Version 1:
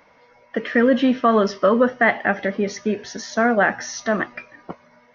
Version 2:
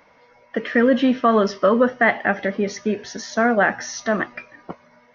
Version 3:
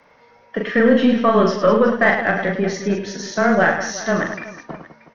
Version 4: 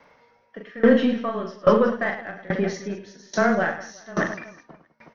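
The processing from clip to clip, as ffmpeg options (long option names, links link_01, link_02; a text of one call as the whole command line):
ffmpeg -i in.wav -af anull out.wav
ffmpeg -i in.wav -af "afreqshift=-16,aeval=exprs='0.596*(cos(1*acos(clip(val(0)/0.596,-1,1)))-cos(1*PI/2))+0.0188*(cos(4*acos(clip(val(0)/0.596,-1,1)))-cos(4*PI/2))':channel_layout=same,aecho=1:1:40|104|206.4|370.2|632.4:0.631|0.398|0.251|0.158|0.1" out.wav
ffmpeg -i in.wav -af "aeval=exprs='val(0)*pow(10,-22*if(lt(mod(1.2*n/s,1),2*abs(1.2)/1000),1-mod(1.2*n/s,1)/(2*abs(1.2)/1000),(mod(1.2*n/s,1)-2*abs(1.2)/1000)/(1-2*abs(1.2)/1000))/20)':channel_layout=same" out.wav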